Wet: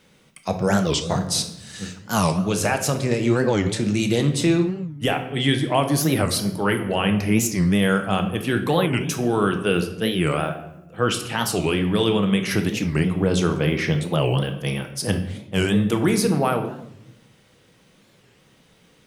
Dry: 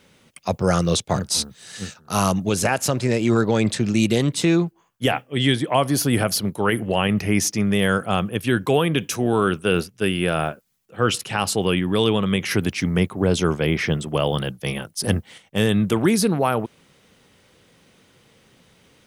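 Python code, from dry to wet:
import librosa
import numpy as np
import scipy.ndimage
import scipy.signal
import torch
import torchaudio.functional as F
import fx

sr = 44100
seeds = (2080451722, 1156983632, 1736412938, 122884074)

y = fx.room_shoebox(x, sr, seeds[0], volume_m3=280.0, walls='mixed', distance_m=0.6)
y = fx.record_warp(y, sr, rpm=45.0, depth_cents=250.0)
y = y * 10.0 ** (-2.0 / 20.0)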